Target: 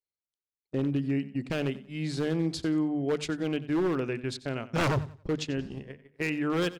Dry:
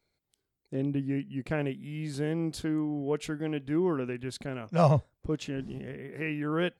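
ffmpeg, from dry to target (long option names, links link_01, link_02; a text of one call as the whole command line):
ffmpeg -i in.wav -filter_complex "[0:a]agate=range=-31dB:threshold=-37dB:ratio=16:detection=peak,lowpass=8300,equalizer=frequency=4600:width=1.1:gain=4.5,bandreject=frequency=50:width_type=h:width=6,bandreject=frequency=100:width_type=h:width=6,bandreject=frequency=150:width_type=h:width=6,bandreject=frequency=200:width_type=h:width=6,bandreject=frequency=250:width_type=h:width=6,asplit=2[link_01][link_02];[link_02]acompressor=threshold=-35dB:ratio=6,volume=-2dB[link_03];[link_01][link_03]amix=inputs=2:normalize=0,aeval=exprs='0.0891*(abs(mod(val(0)/0.0891+3,4)-2)-1)':channel_layout=same,aecho=1:1:91|182|273:0.141|0.0424|0.0127" out.wav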